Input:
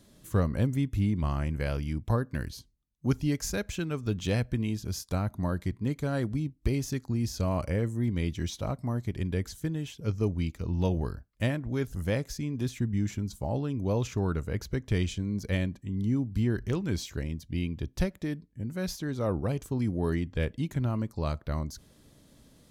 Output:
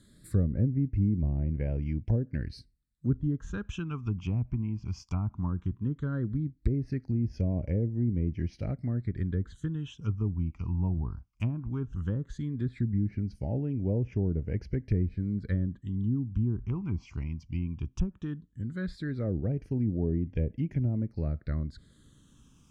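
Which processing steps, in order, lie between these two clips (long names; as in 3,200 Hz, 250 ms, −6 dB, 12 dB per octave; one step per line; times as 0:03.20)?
treble cut that deepens with the level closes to 590 Hz, closed at −23.5 dBFS
all-pass phaser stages 8, 0.16 Hz, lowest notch 500–1,200 Hz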